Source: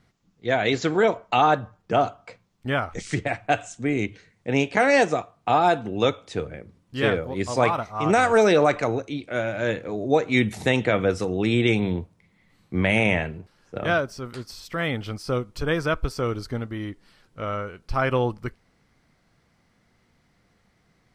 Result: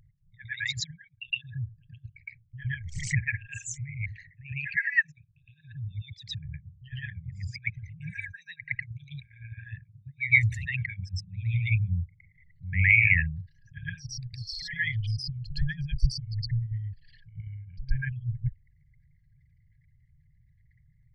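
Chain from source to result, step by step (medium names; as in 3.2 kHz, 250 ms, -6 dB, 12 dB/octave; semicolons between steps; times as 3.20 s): resonances exaggerated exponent 3; brick-wall FIR band-stop 160–1600 Hz; pre-echo 113 ms -12 dB; trim +4.5 dB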